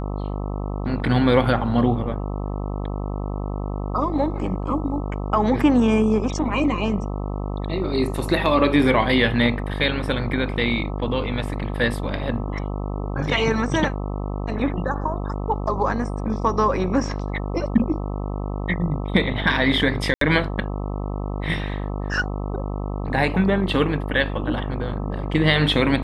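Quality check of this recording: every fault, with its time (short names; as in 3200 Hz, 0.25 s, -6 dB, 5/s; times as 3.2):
buzz 50 Hz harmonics 26 -27 dBFS
20.14–20.21 gap 73 ms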